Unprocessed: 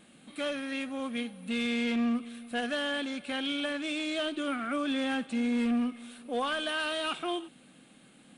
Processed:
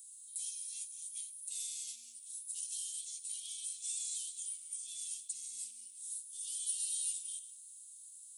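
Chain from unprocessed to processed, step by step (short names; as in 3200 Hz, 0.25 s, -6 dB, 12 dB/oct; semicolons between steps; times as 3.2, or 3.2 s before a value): reverse delay 0.176 s, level -14 dB; inverse Chebyshev high-pass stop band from 1700 Hz, stop band 70 dB; gain +15.5 dB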